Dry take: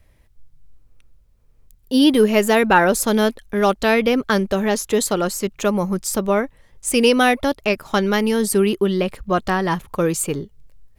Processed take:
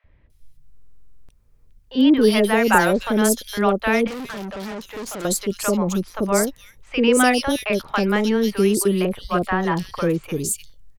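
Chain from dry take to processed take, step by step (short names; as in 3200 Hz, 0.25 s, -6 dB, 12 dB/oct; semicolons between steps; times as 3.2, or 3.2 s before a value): three bands offset in time mids, lows, highs 40/300 ms, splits 670/3200 Hz; 4.07–5.25 tube stage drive 29 dB, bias 0.6; stuck buffer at 0.73, samples 2048, times 11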